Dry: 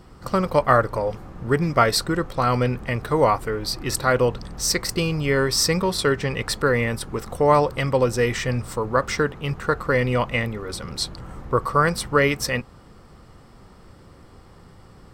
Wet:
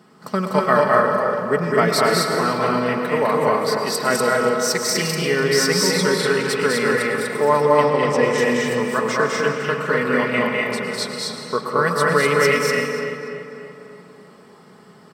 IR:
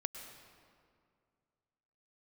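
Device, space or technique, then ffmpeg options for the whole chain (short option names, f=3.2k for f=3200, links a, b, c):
stadium PA: -filter_complex "[0:a]highpass=f=150:w=0.5412,highpass=f=150:w=1.3066,equalizer=f=1.7k:t=o:w=0.42:g=3,aecho=1:1:204.1|244.9:0.708|0.794[a];[1:a]atrim=start_sample=2205[b];[a][b]afir=irnorm=-1:irlink=0,asettb=1/sr,asplit=3[c][d][e];[c]atrim=end=7.884[f];[d]atrim=start=7.88:end=8.38,asetpts=PTS-STARTPTS,afade=t=in:d=0.004:c=qsin,afade=t=out:st=0.496:d=0.004:c=qsin,lowpass=8.7k[g];[e]atrim=start=8.376[h];[f][g]acrossfade=d=0.004:c1=hsin:c2=qsin[i];[i][h]acrossfade=d=0.004:c1=qsin:c2=hsin,aecho=1:1:4.7:0.57,asplit=2[j][k];[k]adelay=290,lowpass=f=3.4k:p=1,volume=-9dB,asplit=2[l][m];[m]adelay=290,lowpass=f=3.4k:p=1,volume=0.54,asplit=2[n][o];[o]adelay=290,lowpass=f=3.4k:p=1,volume=0.54,asplit=2[p][q];[q]adelay=290,lowpass=f=3.4k:p=1,volume=0.54,asplit=2[r][s];[s]adelay=290,lowpass=f=3.4k:p=1,volume=0.54,asplit=2[t][u];[u]adelay=290,lowpass=f=3.4k:p=1,volume=0.54[v];[j][l][n][p][r][t][v]amix=inputs=7:normalize=0,volume=-1dB"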